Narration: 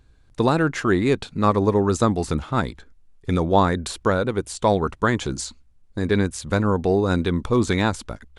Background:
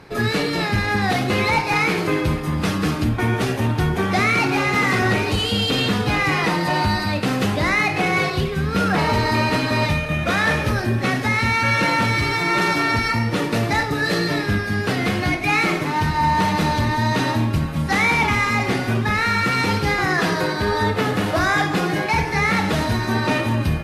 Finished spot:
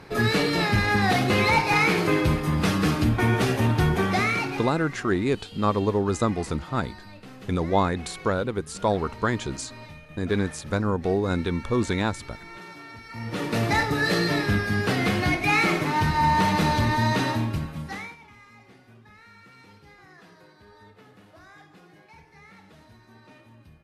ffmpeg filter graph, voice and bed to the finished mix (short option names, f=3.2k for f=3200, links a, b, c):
-filter_complex "[0:a]adelay=4200,volume=-4.5dB[a];[1:a]volume=19.5dB,afade=t=out:st=3.92:d=0.84:silence=0.0794328,afade=t=in:st=13.09:d=0.6:silence=0.0891251,afade=t=out:st=17.03:d=1.13:silence=0.0354813[b];[a][b]amix=inputs=2:normalize=0"